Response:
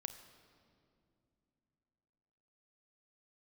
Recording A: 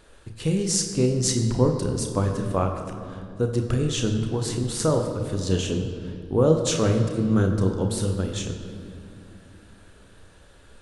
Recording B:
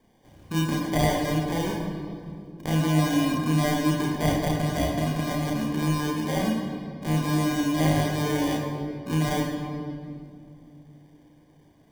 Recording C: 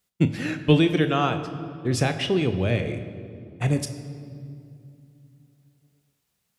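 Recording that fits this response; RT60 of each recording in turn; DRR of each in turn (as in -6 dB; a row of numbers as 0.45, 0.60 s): C; 2.5 s, 2.4 s, not exponential; 3.5, -2.0, 8.0 dB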